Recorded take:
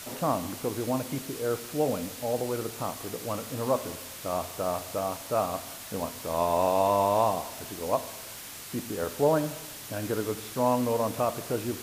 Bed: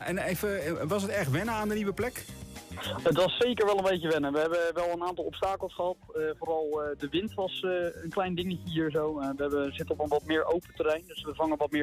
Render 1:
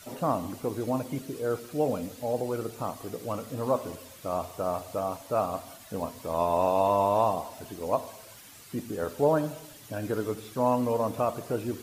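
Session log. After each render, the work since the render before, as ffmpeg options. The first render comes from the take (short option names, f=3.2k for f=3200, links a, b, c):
-af "afftdn=nr=10:nf=-42"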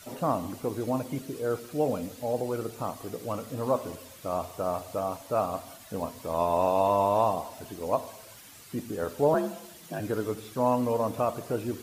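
-filter_complex "[0:a]asettb=1/sr,asplit=3[a][b][c];[a]atrim=end=9.344[d];[b]atrim=start=9.34:end=10,asetpts=PTS-STARTPTS,afade=t=in:d=0.004:c=qsin,afade=t=out:st=0.656:d=0.004:c=qsin,afreqshift=52[e];[c]atrim=start=9.996[f];[d][e]acrossfade=d=0.004:c1=hsin:c2=qsin[g];[g][f]acrossfade=d=0.004:c1=qsin:c2=hsin"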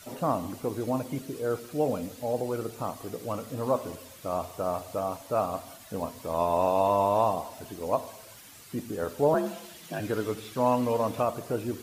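-filter_complex "[0:a]asettb=1/sr,asplit=3[a][b][c];[a]atrim=end=9.464[d];[b]atrim=start=9.46:end=11.23,asetpts=PTS-STARTPTS,afade=t=in:d=0.004:c=qsin,afade=t=out:st=1.766:d=0.004:c=qsin,equalizer=f=2.8k:w=0.72:g=5[e];[c]atrim=start=11.226[f];[d][e]acrossfade=d=0.004:c1=hsin:c2=qsin[g];[g][f]acrossfade=d=0.004:c1=qsin:c2=hsin"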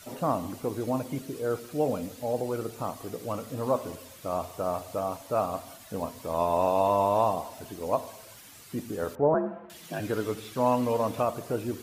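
-filter_complex "[0:a]asettb=1/sr,asplit=3[a][b][c];[a]atrim=end=9.154[d];[b]atrim=start=9.15:end=9.7,asetpts=PTS-STARTPTS,afade=t=in:d=0.004:c=qsin,afade=t=out:st=0.546:d=0.004:c=qsin,lowpass=f=1.6k:w=0.5412,lowpass=f=1.6k:w=1.3066[e];[c]atrim=start=9.696[f];[d][e]acrossfade=d=0.004:c1=hsin:c2=qsin[g];[g][f]acrossfade=d=0.004:c1=qsin:c2=hsin"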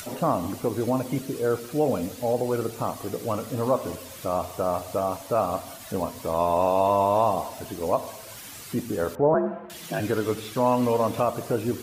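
-filter_complex "[0:a]asplit=2[a][b];[b]alimiter=limit=-22dB:level=0:latency=1:release=132,volume=-0.5dB[c];[a][c]amix=inputs=2:normalize=0,acompressor=mode=upward:threshold=-35dB:ratio=2.5"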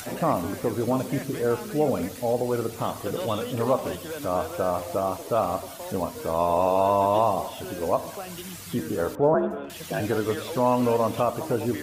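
-filter_complex "[1:a]volume=-8dB[a];[0:a][a]amix=inputs=2:normalize=0"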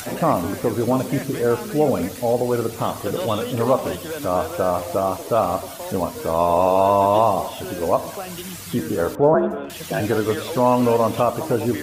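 -af "volume=5dB"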